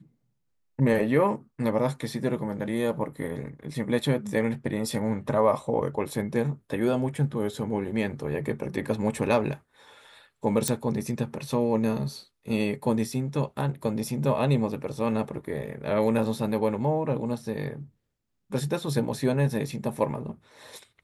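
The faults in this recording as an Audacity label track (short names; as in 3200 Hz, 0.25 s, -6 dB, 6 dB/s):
10.680000	10.680000	pop -8 dBFS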